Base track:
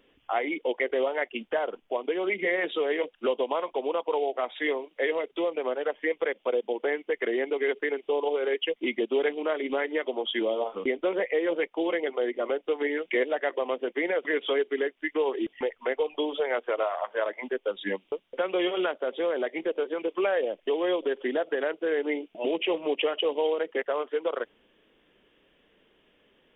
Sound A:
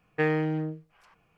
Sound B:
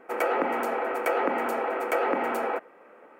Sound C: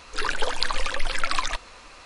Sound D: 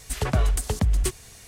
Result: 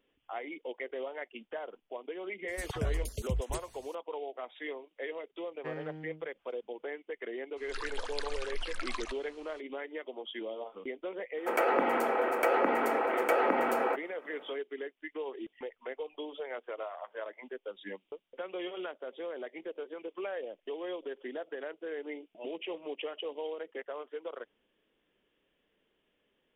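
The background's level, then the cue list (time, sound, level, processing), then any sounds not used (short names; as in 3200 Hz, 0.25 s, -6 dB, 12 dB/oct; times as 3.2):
base track -12 dB
2.48 add D -11 dB + random spectral dropouts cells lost 28%
5.46 add A -16.5 dB
7.56 add C -13.5 dB, fades 0.02 s
11.37 add B -1.5 dB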